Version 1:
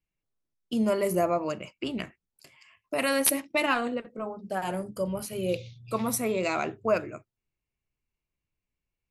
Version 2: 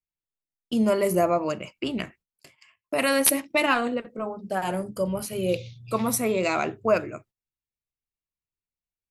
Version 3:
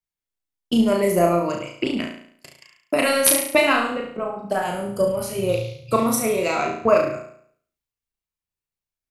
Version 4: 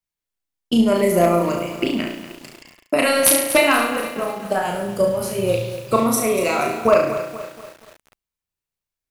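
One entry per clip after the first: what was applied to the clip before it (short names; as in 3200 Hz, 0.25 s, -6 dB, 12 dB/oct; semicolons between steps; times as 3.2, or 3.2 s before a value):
gate -56 dBFS, range -16 dB; gain +3.5 dB
transient shaper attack +8 dB, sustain +4 dB; flutter echo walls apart 6 m, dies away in 0.6 s; gain -1 dB
one-sided fold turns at -7.5 dBFS; lo-fi delay 0.239 s, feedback 55%, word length 6-bit, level -11.5 dB; gain +2 dB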